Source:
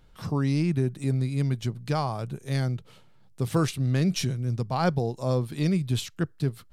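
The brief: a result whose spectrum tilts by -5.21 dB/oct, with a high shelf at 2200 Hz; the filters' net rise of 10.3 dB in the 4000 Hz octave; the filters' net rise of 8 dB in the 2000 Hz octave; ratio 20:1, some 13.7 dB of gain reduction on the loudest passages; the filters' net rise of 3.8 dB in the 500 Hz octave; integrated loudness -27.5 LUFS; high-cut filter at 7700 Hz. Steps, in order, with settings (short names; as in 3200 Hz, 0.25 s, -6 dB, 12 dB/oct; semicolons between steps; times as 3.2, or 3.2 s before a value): LPF 7700 Hz; bell 500 Hz +4 dB; bell 2000 Hz +5.5 dB; high shelf 2200 Hz +5.5 dB; bell 4000 Hz +6.5 dB; compressor 20:1, threshold -30 dBFS; gain +8 dB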